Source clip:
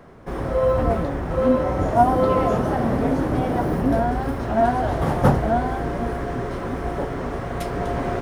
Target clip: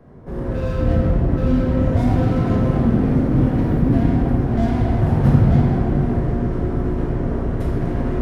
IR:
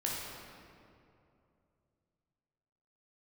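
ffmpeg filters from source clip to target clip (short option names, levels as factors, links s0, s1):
-filter_complex "[0:a]tiltshelf=f=640:g=7.5,acrossover=split=340|1200[s0][s1][s2];[s1]volume=33.5,asoftclip=hard,volume=0.0299[s3];[s0][s3][s2]amix=inputs=3:normalize=0[s4];[1:a]atrim=start_sample=2205[s5];[s4][s5]afir=irnorm=-1:irlink=0,volume=0.562"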